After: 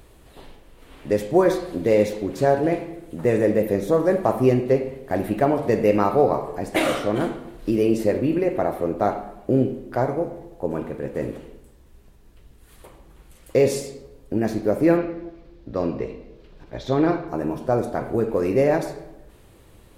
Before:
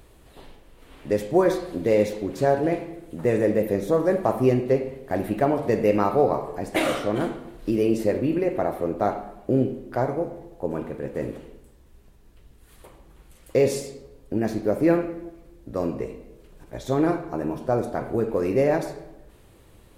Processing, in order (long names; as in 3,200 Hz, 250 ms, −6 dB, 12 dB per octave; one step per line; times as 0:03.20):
0:14.97–0:17.28: high shelf with overshoot 6,400 Hz −12.5 dB, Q 1.5
level +2 dB